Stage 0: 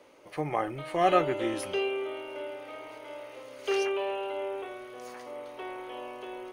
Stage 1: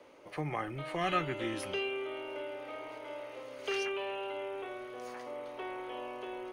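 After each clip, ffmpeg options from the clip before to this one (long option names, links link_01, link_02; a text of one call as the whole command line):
ffmpeg -i in.wav -filter_complex "[0:a]highshelf=frequency=5500:gain=-7,acrossover=split=260|1200|4500[link_01][link_02][link_03][link_04];[link_02]acompressor=threshold=-39dB:ratio=6[link_05];[link_01][link_05][link_03][link_04]amix=inputs=4:normalize=0" out.wav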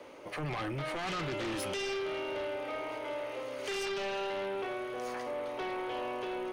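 ffmpeg -i in.wav -af "alimiter=level_in=5dB:limit=-24dB:level=0:latency=1:release=15,volume=-5dB,aeval=exprs='0.0355*sin(PI/2*2*val(0)/0.0355)':channel_layout=same,volume=-3dB" out.wav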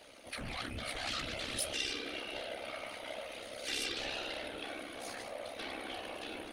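ffmpeg -i in.wav -af "tremolo=f=66:d=0.974,afftfilt=real='hypot(re,im)*cos(2*PI*random(0))':imag='hypot(re,im)*sin(2*PI*random(1))':win_size=512:overlap=0.75,equalizer=frequency=160:width_type=o:width=0.67:gain=-11,equalizer=frequency=400:width_type=o:width=0.67:gain=-11,equalizer=frequency=1000:width_type=o:width=0.67:gain=-9,equalizer=frequency=4000:width_type=o:width=0.67:gain=8,equalizer=frequency=10000:width_type=o:width=0.67:gain=11,volume=8.5dB" out.wav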